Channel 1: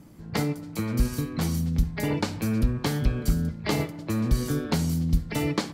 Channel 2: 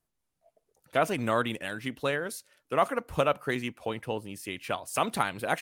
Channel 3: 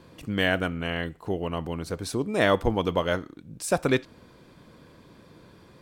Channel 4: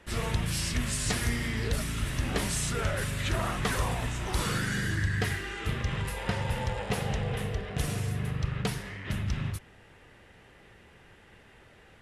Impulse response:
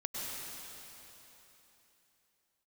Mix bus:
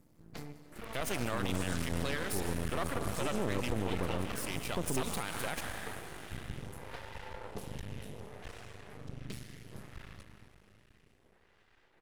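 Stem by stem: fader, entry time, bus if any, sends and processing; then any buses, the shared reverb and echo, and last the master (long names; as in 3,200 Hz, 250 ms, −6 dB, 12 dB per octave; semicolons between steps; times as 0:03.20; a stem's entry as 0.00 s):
−12.5 dB, 0.00 s, send −15.5 dB, automatic ducking −11 dB, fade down 0.55 s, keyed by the second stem
−4.0 dB, 0.00 s, send −8 dB, high-shelf EQ 3,300 Hz +10.5 dB
+0.5 dB, 1.05 s, no send, inverse Chebyshev low-pass filter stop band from 1,700 Hz, stop band 60 dB
−10.0 dB, 0.65 s, send −5.5 dB, parametric band 390 Hz +3 dB; phaser with staggered stages 0.66 Hz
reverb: on, RT60 3.4 s, pre-delay 92 ms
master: half-wave rectification; brickwall limiter −21.5 dBFS, peak gain reduction 12.5 dB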